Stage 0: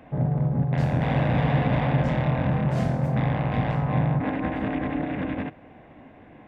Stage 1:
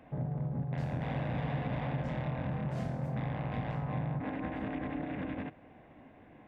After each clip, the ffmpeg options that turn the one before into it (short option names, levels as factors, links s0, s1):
-af "acompressor=threshold=0.0447:ratio=2,volume=0.422"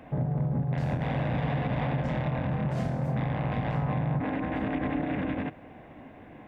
-af "alimiter=level_in=1.68:limit=0.0631:level=0:latency=1:release=68,volume=0.596,volume=2.51"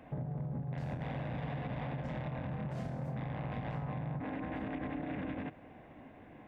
-af "acompressor=threshold=0.0355:ratio=6,volume=0.501"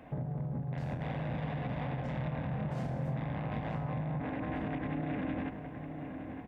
-filter_complex "[0:a]asplit=2[s0][s1];[s1]adelay=914,lowpass=f=2100:p=1,volume=0.398,asplit=2[s2][s3];[s3]adelay=914,lowpass=f=2100:p=1,volume=0.54,asplit=2[s4][s5];[s5]adelay=914,lowpass=f=2100:p=1,volume=0.54,asplit=2[s6][s7];[s7]adelay=914,lowpass=f=2100:p=1,volume=0.54,asplit=2[s8][s9];[s9]adelay=914,lowpass=f=2100:p=1,volume=0.54,asplit=2[s10][s11];[s11]adelay=914,lowpass=f=2100:p=1,volume=0.54[s12];[s0][s2][s4][s6][s8][s10][s12]amix=inputs=7:normalize=0,volume=1.26"